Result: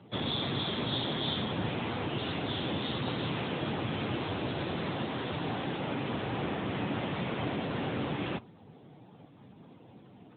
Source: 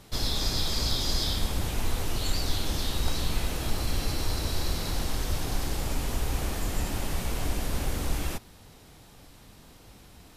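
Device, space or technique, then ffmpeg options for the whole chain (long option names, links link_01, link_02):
mobile call with aggressive noise cancelling: -filter_complex "[0:a]asplit=3[link_01][link_02][link_03];[link_01]afade=type=out:start_time=4.72:duration=0.02[link_04];[link_02]highpass=frequency=86:poles=1,afade=type=in:start_time=4.72:duration=0.02,afade=type=out:start_time=6.07:duration=0.02[link_05];[link_03]afade=type=in:start_time=6.07:duration=0.02[link_06];[link_04][link_05][link_06]amix=inputs=3:normalize=0,highpass=frequency=110:width=0.5412,highpass=frequency=110:width=1.3066,afftdn=noise_reduction=12:noise_floor=-54,volume=4dB" -ar 8000 -c:a libopencore_amrnb -b:a 10200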